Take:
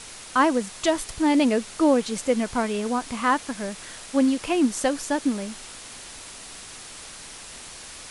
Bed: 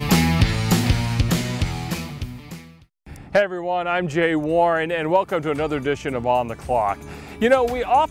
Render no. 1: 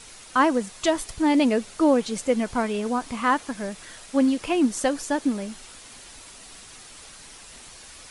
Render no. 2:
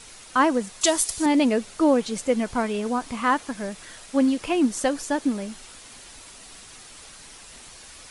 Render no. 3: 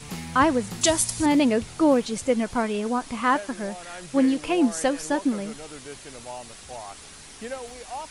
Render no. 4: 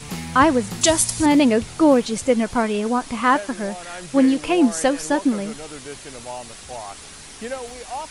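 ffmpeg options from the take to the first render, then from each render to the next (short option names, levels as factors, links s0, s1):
-af "afftdn=nr=6:nf=-42"
-filter_complex "[0:a]asettb=1/sr,asplit=3[s0][s1][s2];[s0]atrim=end=0.814[s3];[s1]atrim=start=0.81:end=1.26,asetpts=PTS-STARTPTS,afade=t=in:d=0.004:c=qsin,afade=t=out:st=0.446:d=0.004:c=qsin,bass=f=250:g=-6,treble=f=4000:g=13[s4];[s2]atrim=start=1.256[s5];[s3][s4]acrossfade=d=0.004:c1=hsin:c2=qsin[s6];[s6][s5]acrossfade=d=0.004:c1=qsin:c2=hsin"
-filter_complex "[1:a]volume=0.119[s0];[0:a][s0]amix=inputs=2:normalize=0"
-af "volume=1.68,alimiter=limit=0.708:level=0:latency=1"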